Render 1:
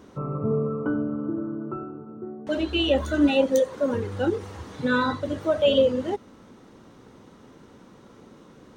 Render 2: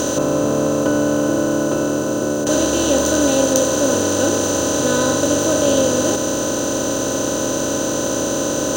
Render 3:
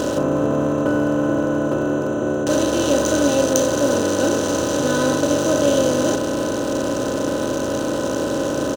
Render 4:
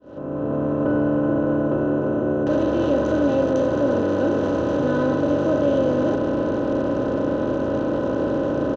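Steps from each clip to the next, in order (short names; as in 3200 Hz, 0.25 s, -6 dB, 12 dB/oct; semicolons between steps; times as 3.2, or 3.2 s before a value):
per-bin compression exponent 0.2; resonant high shelf 4000 Hz +11 dB, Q 3; gain -2.5 dB
Wiener smoothing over 9 samples; doubler 35 ms -10.5 dB; gain -1 dB
opening faded in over 0.92 s; tape spacing loss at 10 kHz 41 dB; in parallel at +1 dB: limiter -17.5 dBFS, peak gain reduction 9.5 dB; on the sum: gain -4 dB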